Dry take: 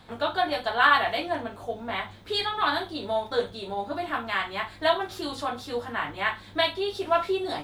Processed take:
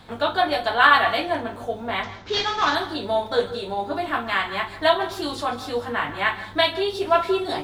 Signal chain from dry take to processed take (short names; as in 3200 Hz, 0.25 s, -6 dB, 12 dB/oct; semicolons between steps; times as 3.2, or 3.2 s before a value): 2.03–2.75 CVSD 32 kbps; reverb RT60 0.35 s, pre-delay 0.132 s, DRR 14 dB; gain +4.5 dB